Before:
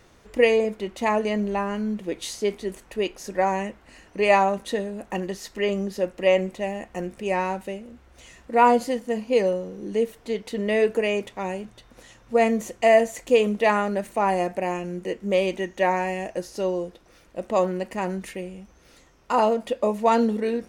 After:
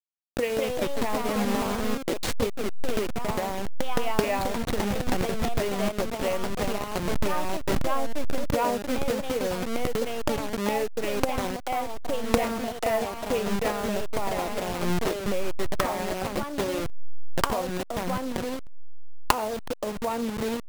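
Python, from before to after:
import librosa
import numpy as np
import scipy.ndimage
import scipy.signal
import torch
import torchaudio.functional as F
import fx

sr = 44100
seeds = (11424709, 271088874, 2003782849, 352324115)

y = fx.delta_hold(x, sr, step_db=-23.0)
y = fx.recorder_agc(y, sr, target_db=-12.0, rise_db_per_s=48.0, max_gain_db=30)
y = fx.echo_pitch(y, sr, ms=240, semitones=2, count=2, db_per_echo=-3.0)
y = F.gain(torch.from_numpy(y), -10.0).numpy()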